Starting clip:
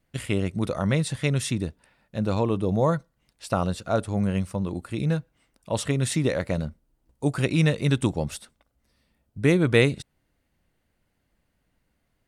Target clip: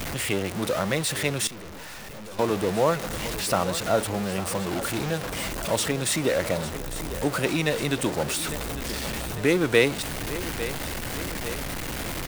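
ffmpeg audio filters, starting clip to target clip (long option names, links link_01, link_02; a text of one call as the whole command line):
ffmpeg -i in.wav -filter_complex "[0:a]aeval=exprs='val(0)+0.5*0.0596*sgn(val(0))':channel_layout=same,acrossover=split=270|2400[link_01][link_02][link_03];[link_01]acompressor=threshold=-34dB:ratio=6[link_04];[link_04][link_02][link_03]amix=inputs=3:normalize=0,asettb=1/sr,asplit=3[link_05][link_06][link_07];[link_05]atrim=end=4.714[link_08];[link_06]atrim=start=4.71:end=5.11,asetpts=PTS-STARTPTS,afade=type=in:duration=0.004:curve=qsin,afade=type=out:start_time=0.396:duration=0.004:curve=qsin,acrusher=bits=4:mix=0:aa=0.5[link_09];[link_07]atrim=start=5.106[link_10];[link_08][link_09]acrossfade=duration=0.004:curve1=hsin:curve2=qsin[link_11];[link_11][link_10]acrossfade=duration=0.004:curve1=qsin:curve2=hsin,aecho=1:1:852|1704|2556|3408|4260|5112:0.224|0.13|0.0753|0.0437|0.0253|0.0147,asettb=1/sr,asplit=3[link_12][link_13][link_14];[link_12]atrim=end=1.474[link_15];[link_13]atrim=start=1.47:end=2.39,asetpts=PTS-STARTPTS,afade=type=in:duration=0.004:curve=qsin,afade=type=out:start_time=0.916:duration=0.004:curve=qsin,aeval=exprs='(tanh(89.1*val(0)+0.6)-tanh(0.6))/89.1':channel_layout=same[link_16];[link_14]atrim=start=2.386[link_17];[link_15][link_16]acrossfade=duration=0.004:curve1=hsin:curve2=qsin[link_18];[link_18][link_17]acrossfade=duration=0.004:curve1=qsin:curve2=hsin" out.wav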